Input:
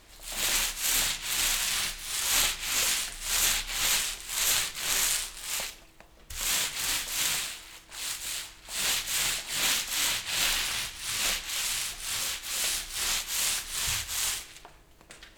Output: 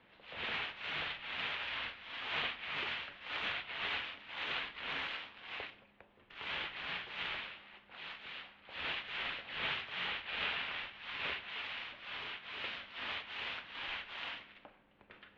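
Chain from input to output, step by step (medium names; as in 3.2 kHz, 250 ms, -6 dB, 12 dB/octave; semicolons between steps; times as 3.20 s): de-hum 108 Hz, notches 2; mistuned SSB -120 Hz 170–3300 Hz; trim -6 dB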